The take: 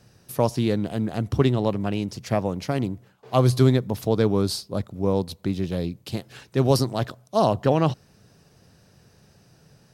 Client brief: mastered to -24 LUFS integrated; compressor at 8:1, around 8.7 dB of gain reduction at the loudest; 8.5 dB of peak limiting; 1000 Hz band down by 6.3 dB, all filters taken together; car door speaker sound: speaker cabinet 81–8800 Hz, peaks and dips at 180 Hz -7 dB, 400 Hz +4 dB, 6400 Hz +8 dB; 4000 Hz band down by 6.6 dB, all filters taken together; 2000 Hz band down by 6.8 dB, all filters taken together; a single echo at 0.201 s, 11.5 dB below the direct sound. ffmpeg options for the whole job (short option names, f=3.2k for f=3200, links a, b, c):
-af "equalizer=f=1k:t=o:g=-8,equalizer=f=2k:t=o:g=-4,equalizer=f=4k:t=o:g=-8.5,acompressor=threshold=-22dB:ratio=8,alimiter=limit=-20dB:level=0:latency=1,highpass=81,equalizer=f=180:t=q:w=4:g=-7,equalizer=f=400:t=q:w=4:g=4,equalizer=f=6.4k:t=q:w=4:g=8,lowpass=f=8.8k:w=0.5412,lowpass=f=8.8k:w=1.3066,aecho=1:1:201:0.266,volume=8.5dB"